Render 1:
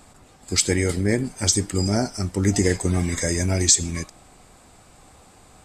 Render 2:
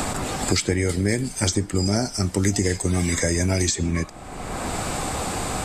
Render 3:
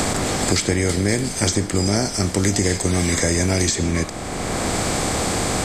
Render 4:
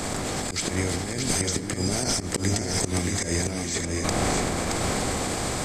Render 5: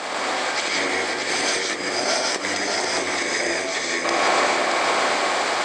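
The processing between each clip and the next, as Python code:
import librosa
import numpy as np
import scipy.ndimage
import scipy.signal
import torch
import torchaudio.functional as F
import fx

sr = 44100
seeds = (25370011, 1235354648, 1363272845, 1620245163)

y1 = fx.band_squash(x, sr, depth_pct=100)
y2 = fx.bin_compress(y1, sr, power=0.6)
y3 = fx.auto_swell(y2, sr, attack_ms=321.0)
y3 = fx.over_compress(y3, sr, threshold_db=-28.0, ratio=-1.0)
y3 = y3 + 10.0 ** (-4.0 / 20.0) * np.pad(y3, (int(623 * sr / 1000.0), 0))[:len(y3)]
y4 = fx.bandpass_edges(y3, sr, low_hz=620.0, high_hz=3900.0)
y4 = fx.rev_gated(y4, sr, seeds[0], gate_ms=200, shape='rising', drr_db=-3.0)
y4 = y4 * librosa.db_to_amplitude(6.5)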